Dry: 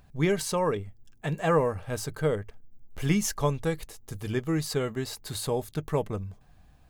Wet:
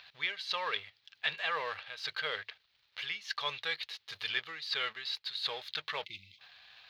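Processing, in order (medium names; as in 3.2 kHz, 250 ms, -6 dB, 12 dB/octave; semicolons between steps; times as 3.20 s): companding laws mixed up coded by mu; in parallel at -2.5 dB: level held to a coarse grid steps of 19 dB; on the sum: differentiator; reverse; compression 16:1, threshold -41 dBFS, peak gain reduction 18 dB; reverse; high-pass 47 Hz; spectral selection erased 6.05–6.39 s, 370–2000 Hz; FFT filter 120 Hz 0 dB, 280 Hz -10 dB, 480 Hz +2 dB, 740 Hz +3 dB, 1.8 kHz +11 dB, 4.1 kHz +12 dB, 8.1 kHz -29 dB; trim +5.5 dB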